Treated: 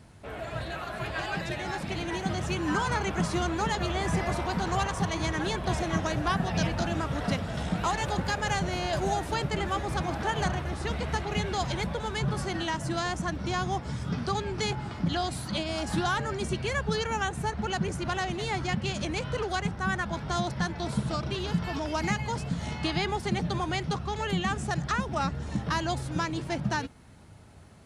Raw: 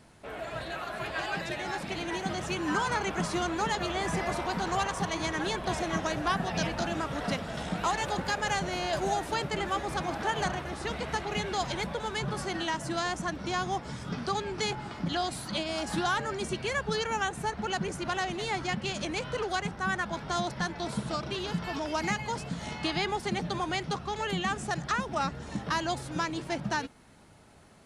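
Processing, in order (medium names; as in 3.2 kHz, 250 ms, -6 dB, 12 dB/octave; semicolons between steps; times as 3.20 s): peaking EQ 85 Hz +10.5 dB 1.8 oct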